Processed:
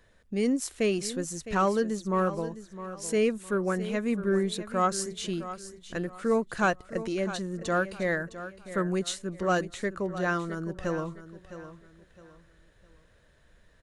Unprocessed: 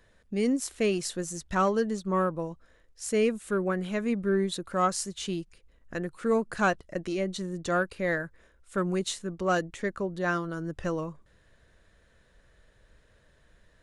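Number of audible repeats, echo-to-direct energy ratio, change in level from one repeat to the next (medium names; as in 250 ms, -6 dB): 3, -12.5 dB, -10.0 dB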